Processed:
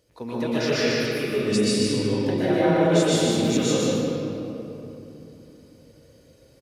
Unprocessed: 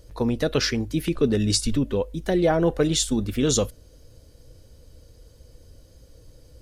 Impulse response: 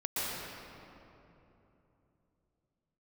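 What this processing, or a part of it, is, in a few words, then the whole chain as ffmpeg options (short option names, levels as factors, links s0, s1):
PA in a hall: -filter_complex "[0:a]asettb=1/sr,asplit=3[s0][s1][s2];[s0]atrim=end=0.744[s3];[s1]atrim=start=0.74:end=1.24,asetpts=PTS-STARTPTS,afade=t=in:d=0.004:c=qsin,afade=t=out:st=0.496:d=0.004:c=qsin,highpass=620[s4];[s2]atrim=start=1.236[s5];[s3][s4]acrossfade=d=0.004:c1=hsin:c2=qsin[s6];[s6][s5]acrossfade=d=0.004:c1=qsin:c2=hsin,highpass=140,equalizer=f=2400:t=o:w=0.86:g=6,aecho=1:1:150:0.631[s7];[1:a]atrim=start_sample=2205[s8];[s7][s8]afir=irnorm=-1:irlink=0,volume=0.422"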